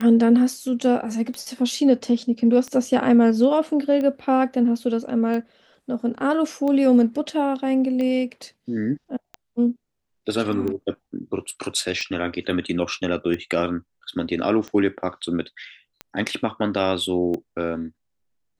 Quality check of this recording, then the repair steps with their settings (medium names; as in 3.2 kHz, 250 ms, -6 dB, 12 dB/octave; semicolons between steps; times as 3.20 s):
tick 45 rpm -18 dBFS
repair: de-click